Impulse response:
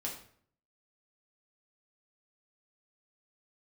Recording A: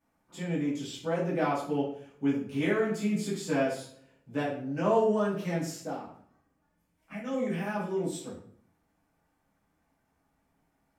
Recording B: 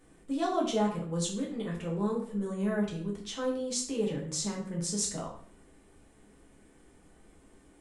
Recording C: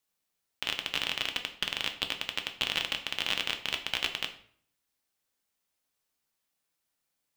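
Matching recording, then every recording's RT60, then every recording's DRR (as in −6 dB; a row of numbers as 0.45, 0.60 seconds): B; 0.55, 0.55, 0.60 seconds; −10.0, −3.0, 5.0 decibels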